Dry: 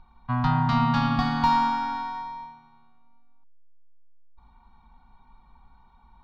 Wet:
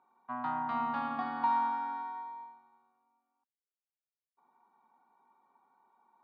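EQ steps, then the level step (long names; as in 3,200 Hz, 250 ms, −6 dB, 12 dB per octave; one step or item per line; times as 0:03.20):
four-pole ladder high-pass 310 Hz, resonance 40%
low-pass filter 1,800 Hz 12 dB per octave
0.0 dB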